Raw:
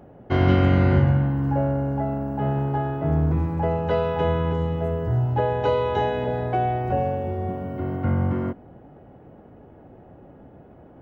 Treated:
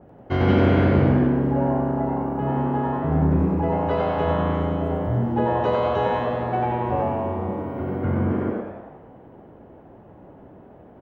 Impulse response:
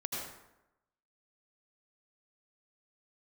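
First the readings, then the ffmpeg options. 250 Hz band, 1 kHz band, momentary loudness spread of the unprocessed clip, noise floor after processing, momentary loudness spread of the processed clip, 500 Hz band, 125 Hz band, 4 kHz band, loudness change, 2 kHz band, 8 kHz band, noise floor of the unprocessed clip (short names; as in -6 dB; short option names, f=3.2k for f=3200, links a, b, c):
+3.5 dB, +2.0 dB, 9 LU, -47 dBFS, 9 LU, +1.5 dB, -1.5 dB, -0.5 dB, +1.0 dB, +1.0 dB, n/a, -48 dBFS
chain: -filter_complex "[0:a]asplit=8[a][b][c][d][e][f][g][h];[b]adelay=94,afreqshift=110,volume=-3.5dB[i];[c]adelay=188,afreqshift=220,volume=-9.5dB[j];[d]adelay=282,afreqshift=330,volume=-15.5dB[k];[e]adelay=376,afreqshift=440,volume=-21.6dB[l];[f]adelay=470,afreqshift=550,volume=-27.6dB[m];[g]adelay=564,afreqshift=660,volume=-33.6dB[n];[h]adelay=658,afreqshift=770,volume=-39.6dB[o];[a][i][j][k][l][m][n][o]amix=inputs=8:normalize=0,asplit=2[p][q];[1:a]atrim=start_sample=2205[r];[q][r]afir=irnorm=-1:irlink=0,volume=-10.5dB[s];[p][s]amix=inputs=2:normalize=0,adynamicequalizer=threshold=0.0158:dfrequency=2800:dqfactor=0.7:tfrequency=2800:tqfactor=0.7:attack=5:release=100:ratio=0.375:range=1.5:mode=cutabove:tftype=highshelf,volume=-3.5dB"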